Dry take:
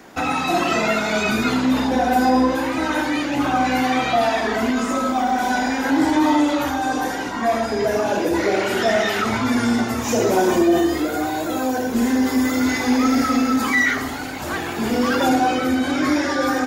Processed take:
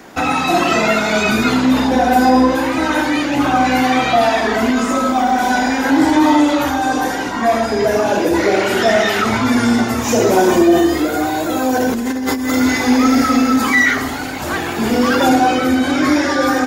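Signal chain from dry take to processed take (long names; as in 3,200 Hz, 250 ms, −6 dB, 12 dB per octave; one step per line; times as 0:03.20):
0:11.70–0:12.55: compressor whose output falls as the input rises −23 dBFS, ratio −1
level +5 dB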